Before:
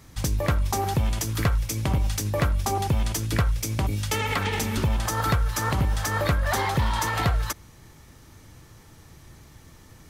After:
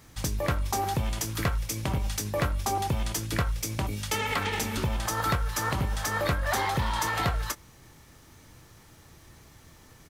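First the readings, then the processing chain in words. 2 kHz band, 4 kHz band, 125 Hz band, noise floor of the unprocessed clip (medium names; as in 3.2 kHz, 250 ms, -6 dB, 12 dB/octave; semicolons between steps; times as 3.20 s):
-1.5 dB, -1.5 dB, -6.0 dB, -51 dBFS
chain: bass shelf 270 Hz -4 dB; added noise pink -63 dBFS; doubling 24 ms -12 dB; trim -2 dB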